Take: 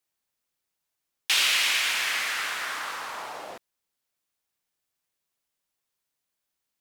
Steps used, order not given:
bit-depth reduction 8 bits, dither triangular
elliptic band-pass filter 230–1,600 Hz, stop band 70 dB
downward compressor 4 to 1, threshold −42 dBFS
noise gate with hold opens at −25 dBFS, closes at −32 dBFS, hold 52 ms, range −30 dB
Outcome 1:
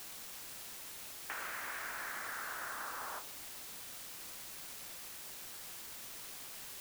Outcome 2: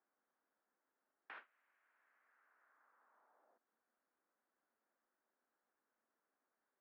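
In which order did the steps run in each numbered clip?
noise gate with hold, then elliptic band-pass filter, then downward compressor, then bit-depth reduction
bit-depth reduction, then downward compressor, then noise gate with hold, then elliptic band-pass filter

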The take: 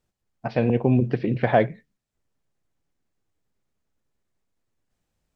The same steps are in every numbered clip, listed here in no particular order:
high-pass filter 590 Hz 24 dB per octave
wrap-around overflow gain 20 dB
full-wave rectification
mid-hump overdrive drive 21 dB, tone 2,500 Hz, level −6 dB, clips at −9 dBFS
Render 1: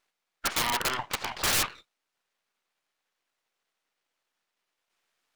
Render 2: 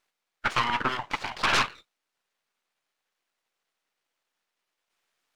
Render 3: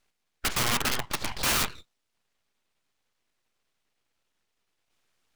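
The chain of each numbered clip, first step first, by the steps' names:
high-pass filter, then full-wave rectification, then mid-hump overdrive, then wrap-around overflow
high-pass filter, then wrap-around overflow, then full-wave rectification, then mid-hump overdrive
high-pass filter, then mid-hump overdrive, then full-wave rectification, then wrap-around overflow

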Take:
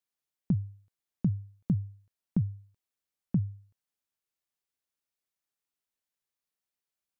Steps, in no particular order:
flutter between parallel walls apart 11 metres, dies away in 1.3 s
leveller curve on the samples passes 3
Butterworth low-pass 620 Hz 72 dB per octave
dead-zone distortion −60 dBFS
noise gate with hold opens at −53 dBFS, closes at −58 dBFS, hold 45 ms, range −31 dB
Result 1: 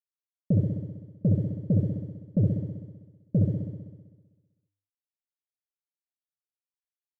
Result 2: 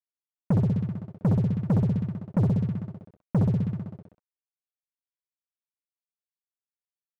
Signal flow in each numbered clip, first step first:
noise gate with hold, then leveller curve on the samples, then Butterworth low-pass, then dead-zone distortion, then flutter between parallel walls
Butterworth low-pass, then noise gate with hold, then flutter between parallel walls, then leveller curve on the samples, then dead-zone distortion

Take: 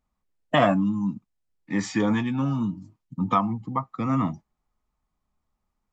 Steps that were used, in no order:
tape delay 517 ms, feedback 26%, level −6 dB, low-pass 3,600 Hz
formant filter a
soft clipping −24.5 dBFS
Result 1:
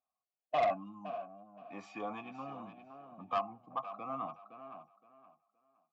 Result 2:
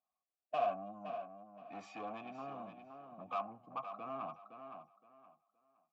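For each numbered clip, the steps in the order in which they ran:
tape delay, then formant filter, then soft clipping
soft clipping, then tape delay, then formant filter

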